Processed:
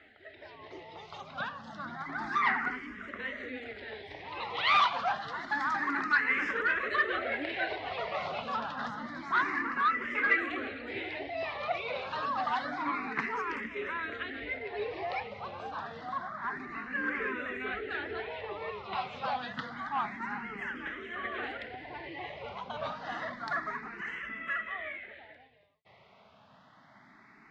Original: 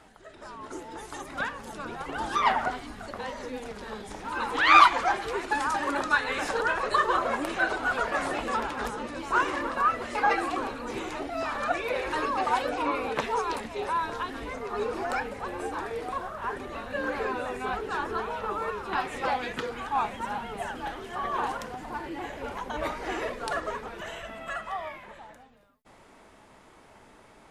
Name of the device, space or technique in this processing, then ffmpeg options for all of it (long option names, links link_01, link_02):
barber-pole phaser into a guitar amplifier: -filter_complex "[0:a]asplit=2[link_01][link_02];[link_02]afreqshift=0.28[link_03];[link_01][link_03]amix=inputs=2:normalize=1,asoftclip=type=tanh:threshold=-19.5dB,highpass=100,equalizer=frequency=340:width_type=q:width=4:gain=-4,equalizer=frequency=500:width_type=q:width=4:gain=-6,equalizer=frequency=900:width_type=q:width=4:gain=-6,equalizer=frequency=2000:width_type=q:width=4:gain=9,lowpass=frequency=4400:width=0.5412,lowpass=frequency=4400:width=1.3066"